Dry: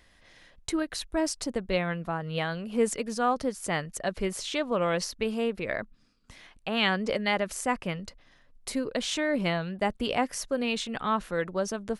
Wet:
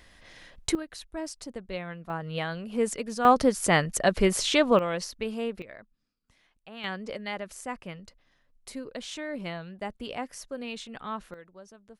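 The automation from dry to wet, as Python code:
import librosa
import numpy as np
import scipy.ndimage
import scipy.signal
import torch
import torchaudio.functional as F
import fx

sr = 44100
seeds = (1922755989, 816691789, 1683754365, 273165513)

y = fx.gain(x, sr, db=fx.steps((0.0, 5.0), (0.75, -8.0), (2.1, -1.5), (3.25, 7.5), (4.79, -3.0), (5.62, -15.0), (6.84, -8.0), (11.34, -19.5)))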